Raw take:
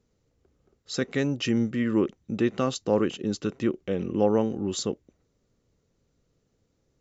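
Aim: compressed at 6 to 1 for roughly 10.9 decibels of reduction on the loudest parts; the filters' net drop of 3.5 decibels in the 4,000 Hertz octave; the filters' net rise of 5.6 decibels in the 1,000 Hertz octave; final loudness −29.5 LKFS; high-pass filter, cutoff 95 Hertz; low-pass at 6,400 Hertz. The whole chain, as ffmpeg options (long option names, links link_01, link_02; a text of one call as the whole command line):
ffmpeg -i in.wav -af "highpass=95,lowpass=6400,equalizer=frequency=1000:width_type=o:gain=7.5,equalizer=frequency=4000:width_type=o:gain=-4.5,acompressor=threshold=-27dB:ratio=6,volume=3.5dB" out.wav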